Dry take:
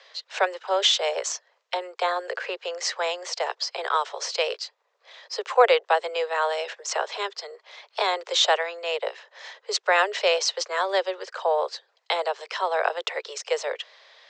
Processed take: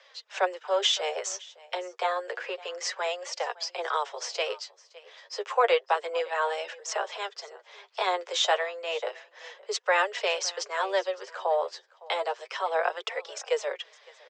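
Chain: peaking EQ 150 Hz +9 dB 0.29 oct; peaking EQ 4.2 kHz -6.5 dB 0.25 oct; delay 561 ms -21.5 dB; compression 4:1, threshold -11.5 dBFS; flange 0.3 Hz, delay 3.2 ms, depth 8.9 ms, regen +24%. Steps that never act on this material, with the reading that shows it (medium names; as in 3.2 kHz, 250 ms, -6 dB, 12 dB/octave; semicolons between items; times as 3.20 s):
peaking EQ 150 Hz: input has nothing below 340 Hz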